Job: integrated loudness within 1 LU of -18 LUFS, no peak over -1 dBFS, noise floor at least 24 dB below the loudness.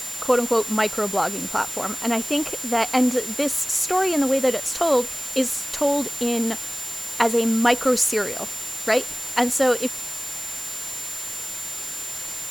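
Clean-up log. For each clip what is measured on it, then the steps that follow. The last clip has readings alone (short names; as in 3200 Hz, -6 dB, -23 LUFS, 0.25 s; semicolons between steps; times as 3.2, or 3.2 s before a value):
steady tone 7200 Hz; tone level -31 dBFS; noise floor -32 dBFS; noise floor target -47 dBFS; loudness -22.5 LUFS; peak -3.0 dBFS; loudness target -18.0 LUFS
-> notch 7200 Hz, Q 30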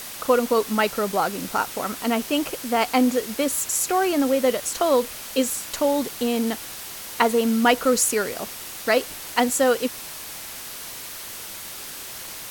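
steady tone none; noise floor -36 dBFS; noise floor target -48 dBFS
-> denoiser 12 dB, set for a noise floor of -36 dBFS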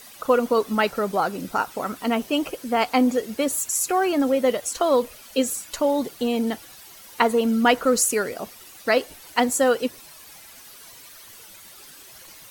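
noise floor -46 dBFS; noise floor target -47 dBFS
-> denoiser 6 dB, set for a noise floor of -46 dBFS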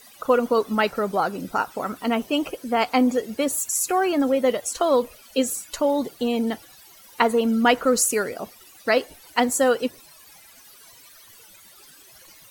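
noise floor -50 dBFS; loudness -22.5 LUFS; peak -3.5 dBFS; loudness target -18.0 LUFS
-> gain +4.5 dB; limiter -1 dBFS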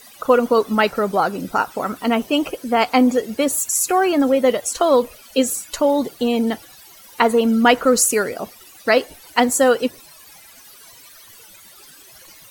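loudness -18.5 LUFS; peak -1.0 dBFS; noise floor -45 dBFS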